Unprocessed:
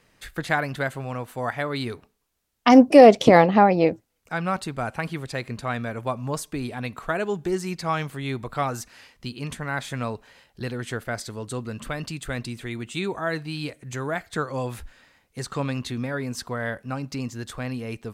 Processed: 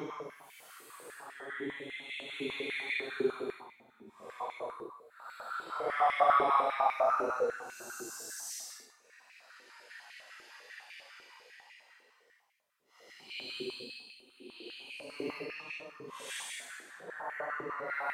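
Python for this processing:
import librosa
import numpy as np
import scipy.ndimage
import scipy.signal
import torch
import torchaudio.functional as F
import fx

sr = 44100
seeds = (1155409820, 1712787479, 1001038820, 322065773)

y = fx.paulstretch(x, sr, seeds[0], factor=11.0, window_s=0.05, from_s=8.04)
y = fx.filter_held_highpass(y, sr, hz=10.0, low_hz=380.0, high_hz=2200.0)
y = y * 10.0 ** (-8.0 / 20.0)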